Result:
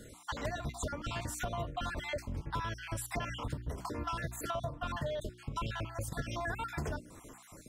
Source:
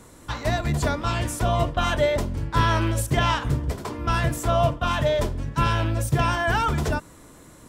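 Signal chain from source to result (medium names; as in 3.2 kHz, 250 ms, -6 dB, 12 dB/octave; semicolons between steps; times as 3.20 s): random holes in the spectrogram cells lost 44%; hum notches 60/120/180/240/300/360 Hz; compression 6:1, threshold -33 dBFS, peak gain reduction 15.5 dB; trim -1.5 dB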